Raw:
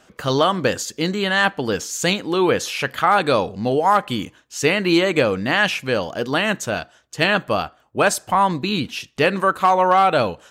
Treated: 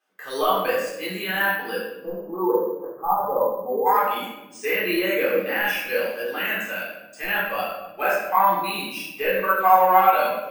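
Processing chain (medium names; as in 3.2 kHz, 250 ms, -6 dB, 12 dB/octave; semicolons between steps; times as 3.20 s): companding laws mixed up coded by A; high-pass 490 Hz 12 dB/octave; de-esser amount 65%; 1.75–3.86 s: elliptic low-pass 1.1 kHz, stop band 60 dB; spectral noise reduction 10 dB; simulated room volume 400 m³, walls mixed, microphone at 3.8 m; careless resampling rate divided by 3×, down filtered, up hold; trim -8.5 dB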